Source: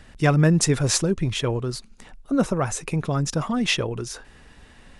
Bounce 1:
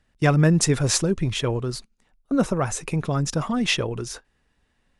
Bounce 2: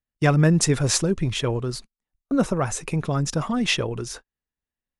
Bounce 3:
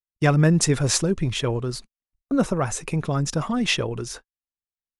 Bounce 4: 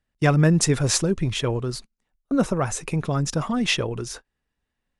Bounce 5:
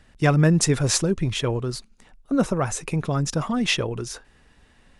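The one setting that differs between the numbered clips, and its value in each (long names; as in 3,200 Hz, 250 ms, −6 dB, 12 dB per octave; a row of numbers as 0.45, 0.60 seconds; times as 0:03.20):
noise gate, range: −19, −44, −60, −31, −7 decibels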